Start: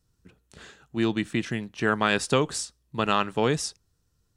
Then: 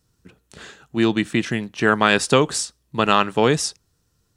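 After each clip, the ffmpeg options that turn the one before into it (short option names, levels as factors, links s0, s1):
-af "lowshelf=f=70:g=-9,volume=2.24"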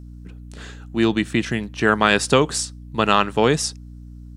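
-af "aeval=exprs='val(0)+0.0141*(sin(2*PI*60*n/s)+sin(2*PI*2*60*n/s)/2+sin(2*PI*3*60*n/s)/3+sin(2*PI*4*60*n/s)/4+sin(2*PI*5*60*n/s)/5)':c=same"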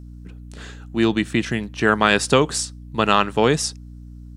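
-af anull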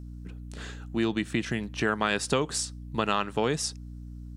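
-af "acompressor=threshold=0.0562:ratio=2,volume=0.75"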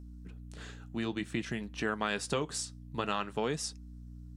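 -af "flanger=delay=4:depth=3.4:regen=-70:speed=0.54:shape=sinusoidal,volume=0.794"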